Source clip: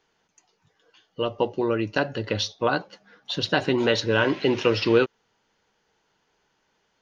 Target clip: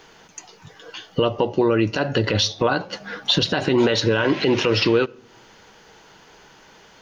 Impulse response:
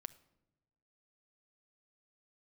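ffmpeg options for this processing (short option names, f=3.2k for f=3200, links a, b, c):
-filter_complex "[0:a]acompressor=threshold=-35dB:ratio=5,asplit=2[a][b];[1:a]atrim=start_sample=2205[c];[b][c]afir=irnorm=-1:irlink=0,volume=-3dB[d];[a][d]amix=inputs=2:normalize=0,alimiter=level_in=25.5dB:limit=-1dB:release=50:level=0:latency=1,volume=-7.5dB"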